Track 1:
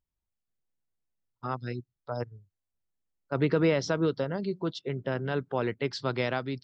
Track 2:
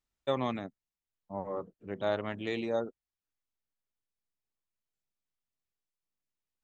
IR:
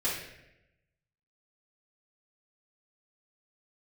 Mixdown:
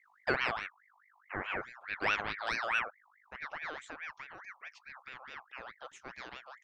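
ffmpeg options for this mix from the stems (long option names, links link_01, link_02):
-filter_complex "[0:a]agate=range=-33dB:threshold=-44dB:ratio=3:detection=peak,aeval=exprs='val(0)+0.00398*(sin(2*PI*50*n/s)+sin(2*PI*2*50*n/s)/2+sin(2*PI*3*50*n/s)/3+sin(2*PI*4*50*n/s)/4+sin(2*PI*5*50*n/s)/5)':channel_layout=same,volume=-15dB[link_01];[1:a]volume=2dB[link_02];[link_01][link_02]amix=inputs=2:normalize=0,aeval=exprs='val(0)*sin(2*PI*1500*n/s+1500*0.4/4.7*sin(2*PI*4.7*n/s))':channel_layout=same"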